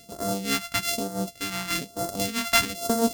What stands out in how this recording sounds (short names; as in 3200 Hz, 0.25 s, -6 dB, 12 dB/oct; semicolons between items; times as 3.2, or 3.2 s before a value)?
a buzz of ramps at a fixed pitch in blocks of 64 samples; phasing stages 2, 1.1 Hz, lowest notch 420–2400 Hz; noise-modulated level